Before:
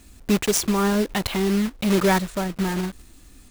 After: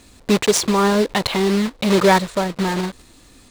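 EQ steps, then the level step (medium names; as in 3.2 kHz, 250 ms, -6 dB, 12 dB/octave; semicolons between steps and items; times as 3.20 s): graphic EQ 125/250/500/1000/2000/4000/8000 Hz +8/+4/+11/+9/+6/+10/+6 dB; -5.0 dB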